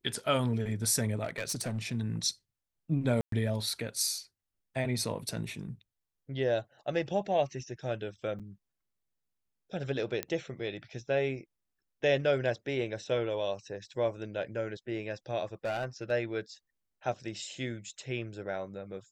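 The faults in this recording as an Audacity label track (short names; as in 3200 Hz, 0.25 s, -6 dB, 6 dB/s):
1.230000	1.780000	clipped -29 dBFS
3.210000	3.320000	gap 0.113 s
8.390000	8.400000	gap 6.7 ms
10.230000	10.230000	pop -16 dBFS
15.650000	16.120000	clipped -28.5 dBFS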